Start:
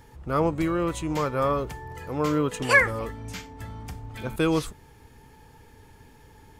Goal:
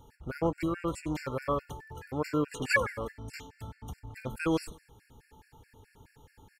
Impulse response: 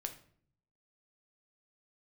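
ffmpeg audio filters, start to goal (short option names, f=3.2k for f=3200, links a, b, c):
-filter_complex "[0:a]asplit=2[a][b];[b]aecho=0:1:96|192:0.112|0.0325[c];[a][c]amix=inputs=2:normalize=0,afftfilt=real='re*gt(sin(2*PI*4.7*pts/sr)*(1-2*mod(floor(b*sr/1024/1400),2)),0)':imag='im*gt(sin(2*PI*4.7*pts/sr)*(1-2*mod(floor(b*sr/1024/1400),2)),0)':win_size=1024:overlap=0.75,volume=-3.5dB"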